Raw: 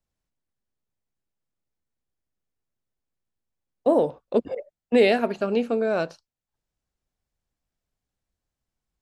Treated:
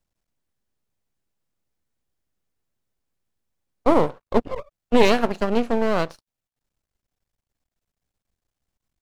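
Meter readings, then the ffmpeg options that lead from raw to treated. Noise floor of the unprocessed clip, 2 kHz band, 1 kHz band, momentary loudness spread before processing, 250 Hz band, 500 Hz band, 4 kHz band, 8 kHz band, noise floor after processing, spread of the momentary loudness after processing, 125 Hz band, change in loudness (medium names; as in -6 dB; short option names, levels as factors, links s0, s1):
under -85 dBFS, +2.0 dB, +6.0 dB, 11 LU, +3.0 dB, 0.0 dB, +4.0 dB, no reading, under -85 dBFS, 10 LU, +6.0 dB, +1.5 dB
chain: -af "aeval=exprs='max(val(0),0)':c=same,volume=1.88"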